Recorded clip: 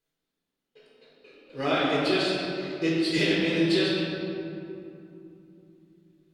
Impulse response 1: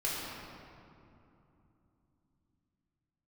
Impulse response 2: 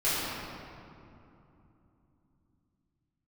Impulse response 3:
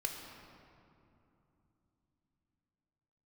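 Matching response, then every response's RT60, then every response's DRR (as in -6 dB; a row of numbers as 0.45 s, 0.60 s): 1; 2.9 s, 2.9 s, 2.9 s; -6.5 dB, -12.5 dB, 2.0 dB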